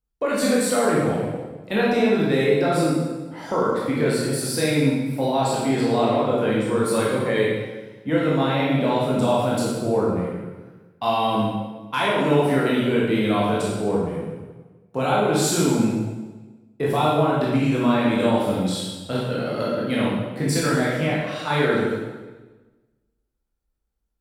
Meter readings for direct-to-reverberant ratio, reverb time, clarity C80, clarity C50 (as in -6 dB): -6.0 dB, 1.2 s, 2.0 dB, -1.0 dB